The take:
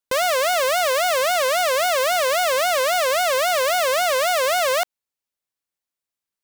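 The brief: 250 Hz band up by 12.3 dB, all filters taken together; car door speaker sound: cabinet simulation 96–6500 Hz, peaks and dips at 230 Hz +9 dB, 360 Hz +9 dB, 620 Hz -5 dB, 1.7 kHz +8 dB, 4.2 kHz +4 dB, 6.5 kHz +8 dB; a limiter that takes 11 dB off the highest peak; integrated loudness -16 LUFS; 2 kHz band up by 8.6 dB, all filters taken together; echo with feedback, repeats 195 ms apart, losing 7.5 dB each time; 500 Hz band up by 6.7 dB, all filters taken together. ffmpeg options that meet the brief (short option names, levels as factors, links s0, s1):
-af "equalizer=f=250:t=o:g=4,equalizer=f=500:t=o:g=9,equalizer=f=2000:t=o:g=5,alimiter=limit=0.112:level=0:latency=1,highpass=96,equalizer=f=230:t=q:w=4:g=9,equalizer=f=360:t=q:w=4:g=9,equalizer=f=620:t=q:w=4:g=-5,equalizer=f=1700:t=q:w=4:g=8,equalizer=f=4200:t=q:w=4:g=4,equalizer=f=6500:t=q:w=4:g=8,lowpass=f=6500:w=0.5412,lowpass=f=6500:w=1.3066,aecho=1:1:195|390|585|780|975:0.422|0.177|0.0744|0.0312|0.0131,volume=2.24"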